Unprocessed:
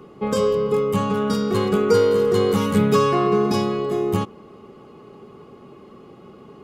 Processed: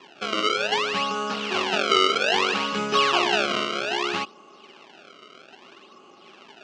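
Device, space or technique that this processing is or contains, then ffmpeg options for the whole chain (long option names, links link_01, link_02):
circuit-bent sampling toy: -af "acrusher=samples=29:mix=1:aa=0.000001:lfo=1:lforange=46.4:lforate=0.62,highpass=450,equalizer=frequency=470:width_type=q:width=4:gain=-10,equalizer=frequency=1300:width_type=q:width=4:gain=3,equalizer=frequency=1900:width_type=q:width=4:gain=-4,equalizer=frequency=2800:width_type=q:width=4:gain=10,lowpass=frequency=5700:width=0.5412,lowpass=frequency=5700:width=1.3066"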